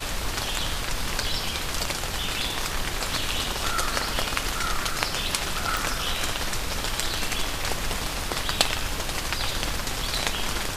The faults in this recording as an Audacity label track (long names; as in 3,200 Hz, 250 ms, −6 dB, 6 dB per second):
5.770000	5.770000	click